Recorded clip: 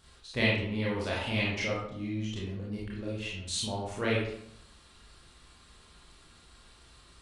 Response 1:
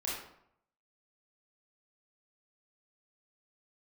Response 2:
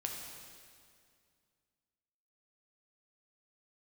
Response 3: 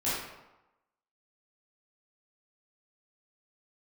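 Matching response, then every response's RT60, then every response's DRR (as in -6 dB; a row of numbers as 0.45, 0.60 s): 1; 0.70, 2.2, 1.0 s; -6.5, 0.0, -11.5 dB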